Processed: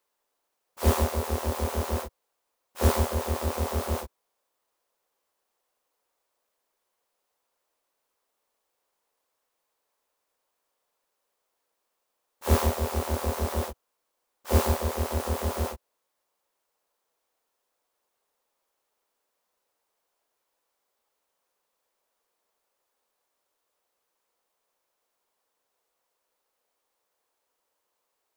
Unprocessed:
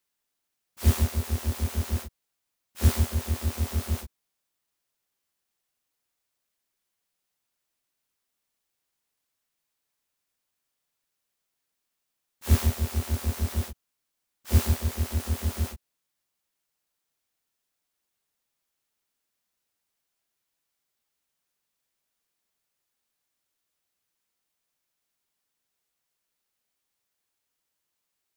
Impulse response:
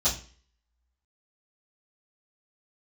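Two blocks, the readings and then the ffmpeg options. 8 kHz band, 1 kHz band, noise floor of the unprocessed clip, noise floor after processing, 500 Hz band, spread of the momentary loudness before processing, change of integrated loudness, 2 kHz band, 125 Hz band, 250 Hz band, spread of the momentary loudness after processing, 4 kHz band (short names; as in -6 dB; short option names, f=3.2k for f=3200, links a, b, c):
0.0 dB, +10.5 dB, -82 dBFS, -80 dBFS, +10.5 dB, 9 LU, -0.5 dB, +3.0 dB, -3.0 dB, +1.0 dB, 11 LU, +0.5 dB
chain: -af "equalizer=f=125:t=o:w=1:g=-8,equalizer=f=500:t=o:w=1:g=12,equalizer=f=1k:t=o:w=1:g=9"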